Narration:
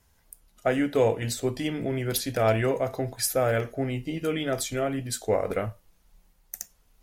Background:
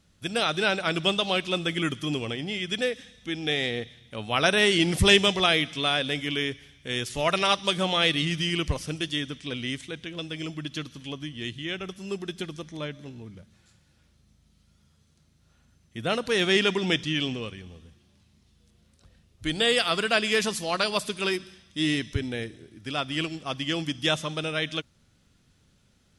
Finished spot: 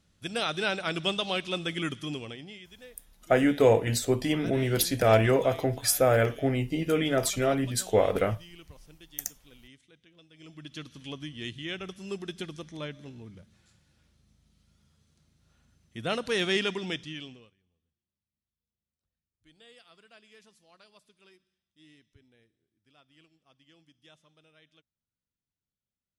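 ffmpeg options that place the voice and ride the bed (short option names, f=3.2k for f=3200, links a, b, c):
-filter_complex "[0:a]adelay=2650,volume=2dB[a];[1:a]volume=15dB,afade=t=out:st=1.94:d=0.77:silence=0.11885,afade=t=in:st=10.33:d=0.76:silence=0.105925,afade=t=out:st=16.34:d=1.2:silence=0.0354813[b];[a][b]amix=inputs=2:normalize=0"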